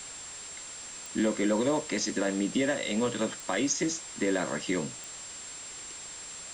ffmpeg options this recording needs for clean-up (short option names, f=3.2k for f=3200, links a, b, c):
-af "adeclick=t=4,bandreject=f=7.5k:w=30,afftdn=nr=30:nf=-43"